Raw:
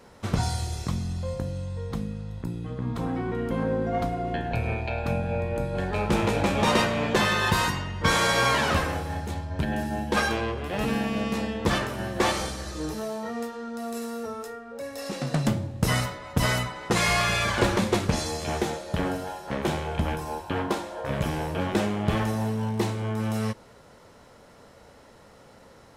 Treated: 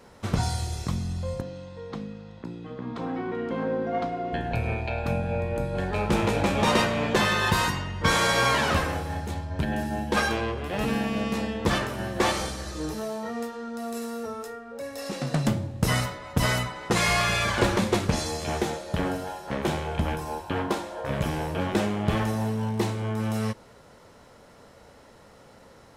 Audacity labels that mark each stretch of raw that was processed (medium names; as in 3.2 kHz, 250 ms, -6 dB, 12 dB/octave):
1.410000	4.330000	three-band isolator lows -16 dB, under 180 Hz, highs -23 dB, over 6.1 kHz